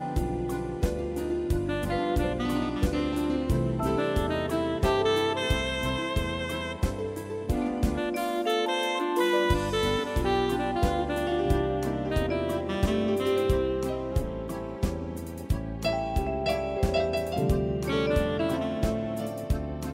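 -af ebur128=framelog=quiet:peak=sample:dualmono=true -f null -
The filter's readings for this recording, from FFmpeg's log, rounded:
Integrated loudness:
  I:         -25.1 LUFS
  Threshold: -35.1 LUFS
Loudness range:
  LRA:         2.9 LU
  Threshold: -45.0 LUFS
  LRA low:   -26.4 LUFS
  LRA high:  -23.6 LUFS
Sample peak:
  Peak:      -11.1 dBFS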